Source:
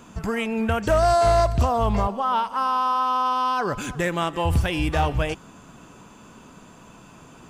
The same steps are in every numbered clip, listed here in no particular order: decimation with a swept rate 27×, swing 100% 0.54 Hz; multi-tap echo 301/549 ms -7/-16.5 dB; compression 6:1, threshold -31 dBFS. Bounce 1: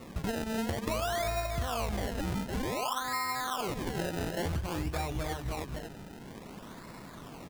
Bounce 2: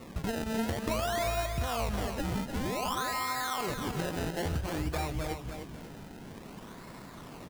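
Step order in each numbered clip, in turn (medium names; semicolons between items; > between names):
multi-tap echo > decimation with a swept rate > compression; decimation with a swept rate > compression > multi-tap echo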